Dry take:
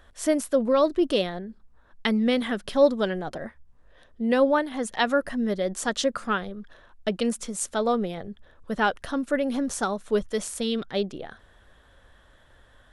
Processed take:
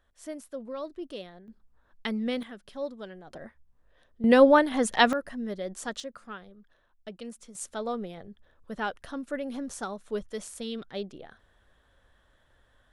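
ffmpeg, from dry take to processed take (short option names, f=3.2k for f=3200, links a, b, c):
-af "asetnsamples=n=441:p=0,asendcmd='1.48 volume volume -7.5dB;2.43 volume volume -16dB;3.3 volume volume -8.5dB;4.24 volume volume 3.5dB;5.13 volume volume -8dB;6 volume volume -15.5dB;7.55 volume volume -8.5dB',volume=-16dB"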